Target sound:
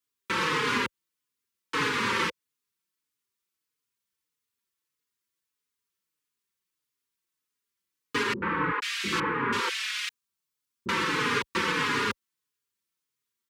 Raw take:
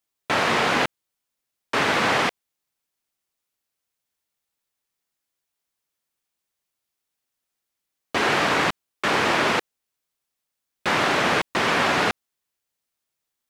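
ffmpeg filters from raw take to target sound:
-filter_complex "[0:a]asuperstop=centerf=680:order=8:qfactor=1.8,asettb=1/sr,asplit=3[a][b][c];[a]atrim=end=8.334[d];[b]atrim=start=8.33:end=10.89,asetpts=PTS-STARTPTS,afade=t=in:d=0.004:c=qsin,afade=t=out:st=2.556:d=0.004:c=qsin,acrossover=split=400|2000[e][f][g];[f]adelay=90[h];[g]adelay=490[i];[e][h][i]amix=inputs=3:normalize=0,atrim=end_sample=112896[j];[c]atrim=start=10.886[k];[d][j]acrossfade=d=0.004:c1=hsin:c2=qsin[l];[l][k]acrossfade=d=0.004:c1=qsin:c2=hsin,alimiter=limit=-14dB:level=0:latency=1:release=164,highpass=64,asplit=2[m][n];[n]adelay=4.3,afreqshift=-1.6[o];[m][o]amix=inputs=2:normalize=1"

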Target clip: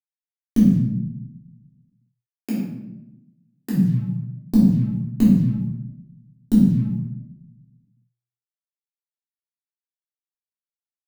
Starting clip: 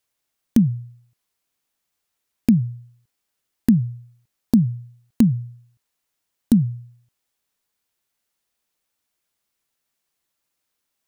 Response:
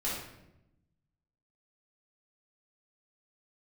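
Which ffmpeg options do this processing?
-filter_complex "[0:a]asplit=3[a][b][c];[a]afade=t=out:st=0.75:d=0.02[d];[b]highpass=380,afade=t=in:st=0.75:d=0.02,afade=t=out:st=3.71:d=0.02[e];[c]afade=t=in:st=3.71:d=0.02[f];[d][e][f]amix=inputs=3:normalize=0,acrusher=bits=7:mix=0:aa=0.5[g];[1:a]atrim=start_sample=2205[h];[g][h]afir=irnorm=-1:irlink=0,volume=-4.5dB"

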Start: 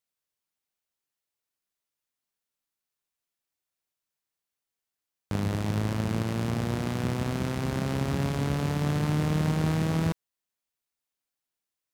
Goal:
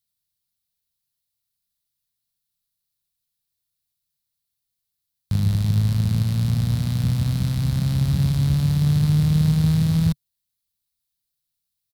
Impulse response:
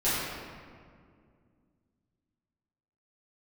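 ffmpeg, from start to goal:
-filter_complex "[0:a]firequalizer=gain_entry='entry(140,0);entry(360,-25);entry(560,-19);entry(850,-18);entry(1500,-16);entry(2800,-12);entry(4000,-2);entry(6400,-9);entry(11000,-2)':delay=0.05:min_phase=1,asplit=2[a][b];[b]asoftclip=type=tanh:threshold=-25dB,volume=-7dB[c];[a][c]amix=inputs=2:normalize=0,volume=8dB"

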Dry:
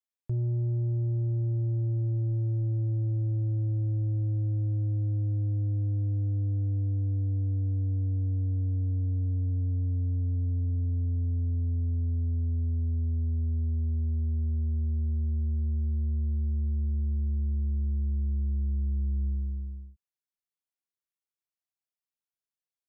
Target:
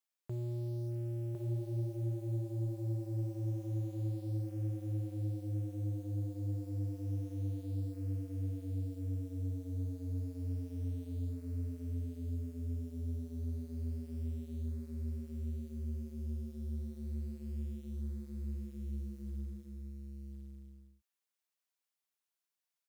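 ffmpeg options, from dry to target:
-af "highpass=f=530:p=1,acontrast=87,acrusher=bits=8:mode=log:mix=0:aa=0.000001,aecho=1:1:1055:0.631,volume=-4.5dB"

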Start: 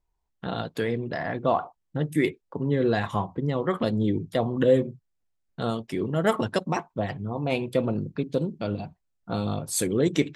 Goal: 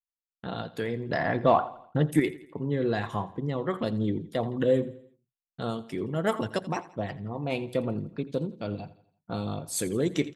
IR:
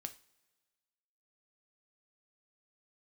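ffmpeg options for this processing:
-filter_complex "[0:a]asettb=1/sr,asplit=3[a][b][c];[a]atrim=end=1.094[d];[b]atrim=start=1.09:end=2.2,asetpts=PTS-STARTPTS,afade=t=in:d=0.004:c=qsin,afade=t=out:st=1.106:d=0.004:c=qsin,acontrast=78[e];[c]atrim=start=2.196[f];[d][e]acrossfade=d=0.004:c1=hsin:c2=qsin[g];[g][f]acrossfade=d=0.004:c1=qsin:c2=hsin,agate=range=-33dB:threshold=-38dB:ratio=3:detection=peak,aecho=1:1:84|168|252|336:0.126|0.0592|0.0278|0.0131,volume=-4dB"

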